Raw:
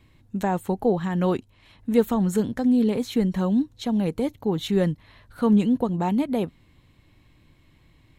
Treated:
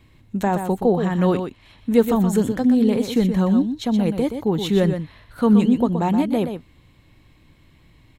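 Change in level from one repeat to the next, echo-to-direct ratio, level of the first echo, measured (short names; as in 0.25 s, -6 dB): no steady repeat, -8.0 dB, -8.0 dB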